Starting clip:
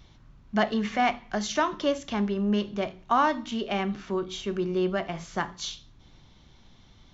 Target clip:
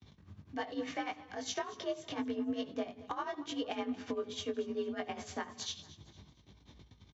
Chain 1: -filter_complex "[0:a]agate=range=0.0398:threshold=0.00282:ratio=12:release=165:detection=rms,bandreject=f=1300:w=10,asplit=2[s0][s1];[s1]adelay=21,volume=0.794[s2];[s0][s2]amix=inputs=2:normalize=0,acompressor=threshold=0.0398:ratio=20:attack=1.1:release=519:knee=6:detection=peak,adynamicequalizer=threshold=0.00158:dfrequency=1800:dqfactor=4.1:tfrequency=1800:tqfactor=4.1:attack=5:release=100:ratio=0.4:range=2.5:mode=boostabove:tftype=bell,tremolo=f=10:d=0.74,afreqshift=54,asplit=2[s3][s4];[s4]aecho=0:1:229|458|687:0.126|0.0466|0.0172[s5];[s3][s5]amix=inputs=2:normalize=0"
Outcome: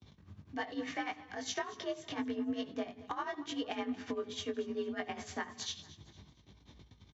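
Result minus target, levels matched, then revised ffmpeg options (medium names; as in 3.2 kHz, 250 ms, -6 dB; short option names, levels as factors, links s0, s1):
2 kHz band +3.0 dB
-filter_complex "[0:a]agate=range=0.0398:threshold=0.00282:ratio=12:release=165:detection=rms,bandreject=f=1300:w=10,asplit=2[s0][s1];[s1]adelay=21,volume=0.794[s2];[s0][s2]amix=inputs=2:normalize=0,acompressor=threshold=0.0398:ratio=20:attack=1.1:release=519:knee=6:detection=peak,adynamicequalizer=threshold=0.00158:dfrequency=480:dqfactor=4.1:tfrequency=480:tqfactor=4.1:attack=5:release=100:ratio=0.4:range=2.5:mode=boostabove:tftype=bell,tremolo=f=10:d=0.74,afreqshift=54,asplit=2[s3][s4];[s4]aecho=0:1:229|458|687:0.126|0.0466|0.0172[s5];[s3][s5]amix=inputs=2:normalize=0"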